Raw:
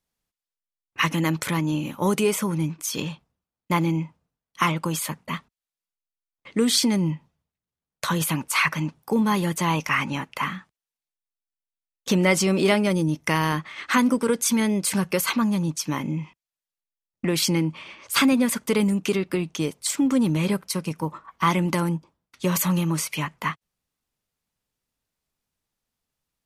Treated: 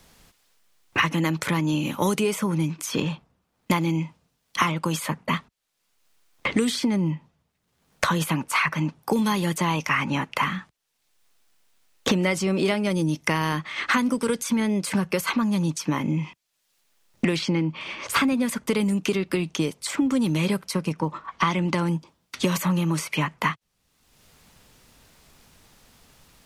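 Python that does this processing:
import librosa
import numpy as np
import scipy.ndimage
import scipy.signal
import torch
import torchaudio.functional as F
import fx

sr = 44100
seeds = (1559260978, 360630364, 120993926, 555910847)

y = fx.lowpass(x, sr, hz=5000.0, slope=12, at=(17.36, 17.81))
y = fx.air_absorb(y, sr, metres=73.0, at=(20.92, 21.89))
y = fx.high_shelf(y, sr, hz=9300.0, db=-7.0)
y = fx.band_squash(y, sr, depth_pct=100)
y = y * 10.0 ** (-1.0 / 20.0)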